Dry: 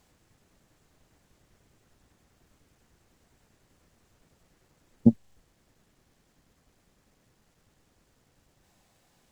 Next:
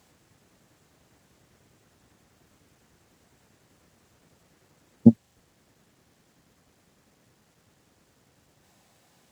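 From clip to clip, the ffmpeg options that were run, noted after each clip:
ffmpeg -i in.wav -af "highpass=83,volume=4.5dB" out.wav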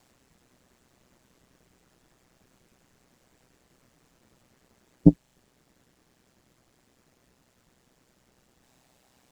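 ffmpeg -i in.wav -af "aeval=exprs='val(0)*sin(2*PI*63*n/s)':channel_layout=same,volume=1dB" out.wav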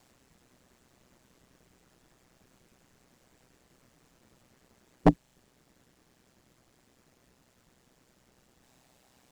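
ffmpeg -i in.wav -af "aeval=exprs='0.398*(abs(mod(val(0)/0.398+3,4)-2)-1)':channel_layout=same" out.wav

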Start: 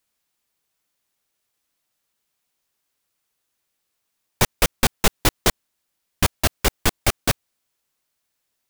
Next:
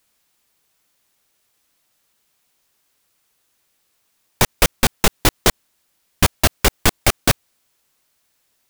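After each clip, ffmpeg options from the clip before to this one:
ffmpeg -i in.wav -af "alimiter=level_in=10.5dB:limit=-1dB:release=50:level=0:latency=1,volume=-1dB" out.wav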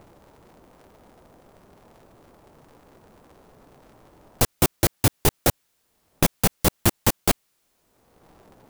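ffmpeg -i in.wav -filter_complex "[0:a]acrossover=split=860|7900[link_01][link_02][link_03];[link_01]acompressor=mode=upward:threshold=-24dB:ratio=2.5[link_04];[link_02]aeval=exprs='(mod(5.31*val(0)+1,2)-1)/5.31':channel_layout=same[link_05];[link_04][link_05][link_03]amix=inputs=3:normalize=0,aeval=exprs='val(0)*sgn(sin(2*PI*110*n/s))':channel_layout=same,volume=-3.5dB" out.wav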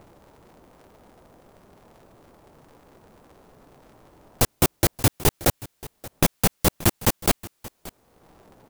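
ffmpeg -i in.wav -af "aecho=1:1:578:0.106" out.wav

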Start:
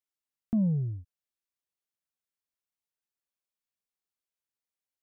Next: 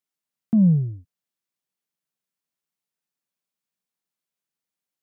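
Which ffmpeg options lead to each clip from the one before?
ffmpeg -i in.wav -af "highpass=130,equalizer=frequency=170:width_type=o:width=0.97:gain=8.5,volume=3.5dB" out.wav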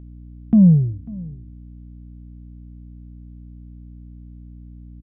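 ffmpeg -i in.wav -af "aeval=exprs='val(0)+0.00708*(sin(2*PI*60*n/s)+sin(2*PI*2*60*n/s)/2+sin(2*PI*3*60*n/s)/3+sin(2*PI*4*60*n/s)/4+sin(2*PI*5*60*n/s)/5)':channel_layout=same,aecho=1:1:545:0.0891,aresample=8000,aresample=44100,volume=5dB" out.wav

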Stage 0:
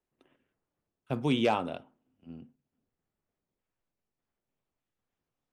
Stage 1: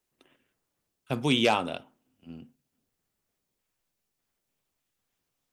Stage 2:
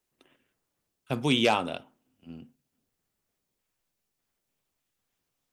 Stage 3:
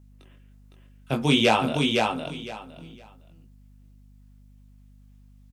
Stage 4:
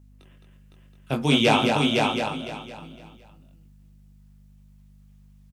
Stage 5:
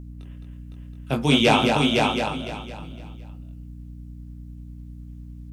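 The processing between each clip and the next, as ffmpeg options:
ffmpeg -i in.wav -af "highshelf=frequency=2200:gain=11,volume=1.5dB" out.wav
ffmpeg -i in.wav -af anull out.wav
ffmpeg -i in.wav -af "flanger=delay=18:depth=4:speed=1.3,aecho=1:1:510|1020|1530:0.668|0.134|0.0267,aeval=exprs='val(0)+0.00126*(sin(2*PI*50*n/s)+sin(2*PI*2*50*n/s)/2+sin(2*PI*3*50*n/s)/3+sin(2*PI*4*50*n/s)/4+sin(2*PI*5*50*n/s)/5)':channel_layout=same,volume=7dB" out.wav
ffmpeg -i in.wav -af "aecho=1:1:214:0.562" out.wav
ffmpeg -i in.wav -af "aeval=exprs='val(0)+0.0112*(sin(2*PI*60*n/s)+sin(2*PI*2*60*n/s)/2+sin(2*PI*3*60*n/s)/3+sin(2*PI*4*60*n/s)/4+sin(2*PI*5*60*n/s)/5)':channel_layout=same,volume=1.5dB" out.wav

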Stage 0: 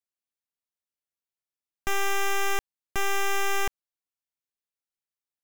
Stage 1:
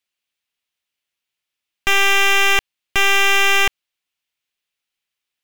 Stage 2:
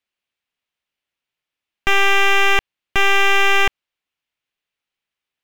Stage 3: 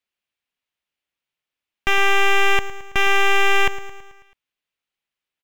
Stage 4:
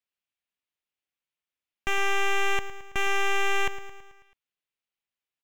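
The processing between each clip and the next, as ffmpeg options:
ffmpeg -i in.wav -af "equalizer=frequency=2800:width=0.94:gain=12.5,volume=6.5dB" out.wav
ffmpeg -i in.wav -af "highshelf=frequency=3500:gain=-11.5,volume=2.5dB" out.wav
ffmpeg -i in.wav -af "aecho=1:1:109|218|327|436|545|654:0.188|0.107|0.0612|0.0349|0.0199|0.0113,volume=-2.5dB" out.wav
ffmpeg -i in.wav -af "asoftclip=type=tanh:threshold=-10.5dB,volume=-7dB" out.wav

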